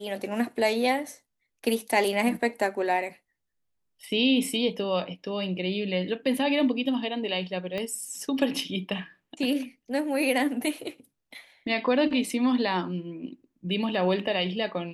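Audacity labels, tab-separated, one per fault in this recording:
7.780000	7.780000	pop -20 dBFS

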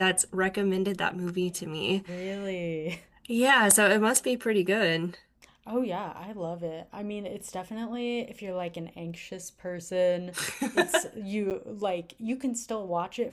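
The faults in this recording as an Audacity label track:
11.500000	11.510000	gap 8.8 ms

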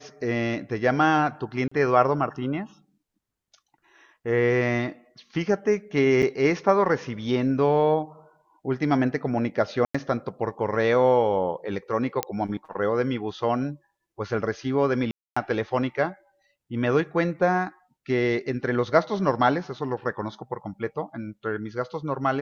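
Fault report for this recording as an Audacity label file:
1.680000	1.720000	gap 35 ms
6.220000	6.230000	gap 7.4 ms
9.850000	9.950000	gap 95 ms
12.230000	12.230000	pop -8 dBFS
15.110000	15.370000	gap 0.255 s

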